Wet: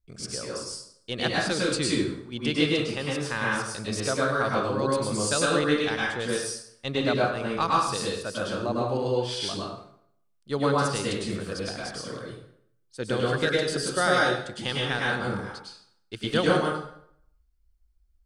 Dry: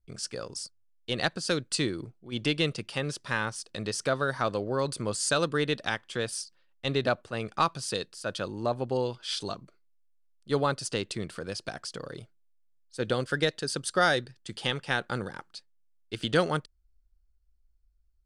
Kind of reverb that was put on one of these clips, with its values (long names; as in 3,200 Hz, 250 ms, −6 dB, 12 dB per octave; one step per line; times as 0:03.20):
dense smooth reverb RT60 0.68 s, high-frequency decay 0.75×, pre-delay 90 ms, DRR −4.5 dB
level −2 dB